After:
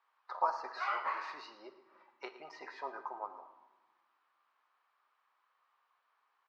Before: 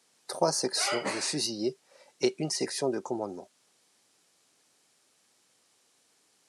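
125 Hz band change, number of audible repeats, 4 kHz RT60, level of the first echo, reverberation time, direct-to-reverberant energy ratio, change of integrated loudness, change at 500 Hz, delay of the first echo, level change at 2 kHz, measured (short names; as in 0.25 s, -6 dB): under -35 dB, 2, 0.70 s, -16.0 dB, 1.2 s, 7.0 dB, -9.5 dB, -16.0 dB, 0.113 s, -5.0 dB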